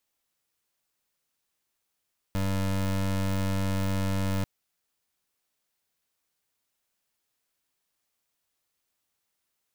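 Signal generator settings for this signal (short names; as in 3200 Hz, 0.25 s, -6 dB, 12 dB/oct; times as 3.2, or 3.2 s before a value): pulse 96.5 Hz, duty 25% -27 dBFS 2.09 s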